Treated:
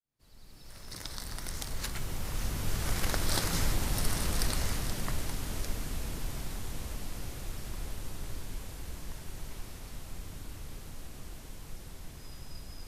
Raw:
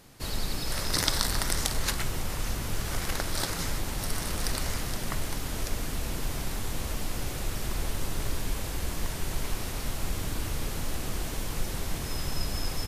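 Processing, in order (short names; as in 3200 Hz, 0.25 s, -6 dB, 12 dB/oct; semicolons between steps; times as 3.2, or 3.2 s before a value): opening faded in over 3.70 s; Doppler pass-by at 3.31, 9 m/s, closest 13 m; tone controls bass +3 dB, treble +1 dB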